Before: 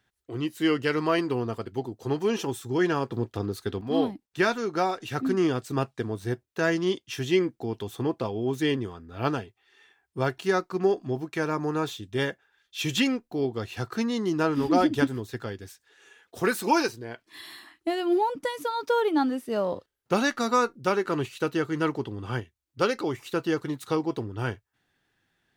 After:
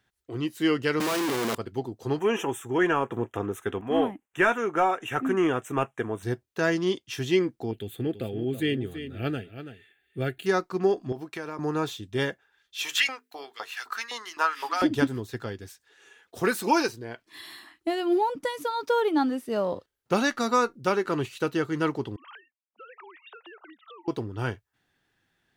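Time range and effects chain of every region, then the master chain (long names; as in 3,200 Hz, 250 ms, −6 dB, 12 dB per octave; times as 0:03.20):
0:01.00–0:01.55: sign of each sample alone + high-pass filter 160 Hz 24 dB per octave
0:02.19–0:06.23: mid-hump overdrive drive 11 dB, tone 5,300 Hz, clips at −10.5 dBFS + Butterworth band-reject 4,500 Hz, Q 1.2
0:07.71–0:10.46: high-shelf EQ 6,100 Hz +4.5 dB + phaser with its sweep stopped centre 2,400 Hz, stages 4 + single-tap delay 331 ms −11 dB
0:11.12–0:11.59: high-pass filter 260 Hz 6 dB per octave + parametric band 6,600 Hz −4.5 dB 0.2 octaves + downward compressor 4 to 1, threshold −31 dBFS
0:12.83–0:14.82: high-shelf EQ 10,000 Hz +6 dB + mains-hum notches 50/100/150/200/250/300/350/400/450 Hz + auto-filter high-pass saw up 3.9 Hz 810–2,300 Hz
0:22.16–0:24.08: three sine waves on the formant tracks + high-pass filter 940 Hz + downward compressor 12 to 1, threshold −43 dBFS
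whole clip: no processing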